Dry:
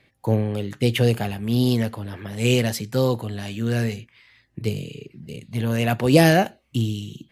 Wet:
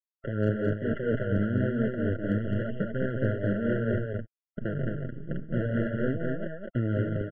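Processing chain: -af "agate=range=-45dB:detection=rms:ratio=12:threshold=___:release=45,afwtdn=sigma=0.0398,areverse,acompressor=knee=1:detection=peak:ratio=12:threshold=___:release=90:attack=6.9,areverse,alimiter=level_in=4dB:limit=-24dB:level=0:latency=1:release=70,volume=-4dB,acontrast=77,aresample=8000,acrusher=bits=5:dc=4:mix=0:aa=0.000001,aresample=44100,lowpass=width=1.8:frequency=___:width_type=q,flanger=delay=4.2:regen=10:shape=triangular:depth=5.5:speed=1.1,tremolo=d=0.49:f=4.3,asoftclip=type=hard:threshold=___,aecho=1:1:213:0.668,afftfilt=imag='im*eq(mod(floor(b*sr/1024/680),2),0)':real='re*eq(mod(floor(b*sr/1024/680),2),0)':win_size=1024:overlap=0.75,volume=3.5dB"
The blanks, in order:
-52dB, -27dB, 1200, -16.5dB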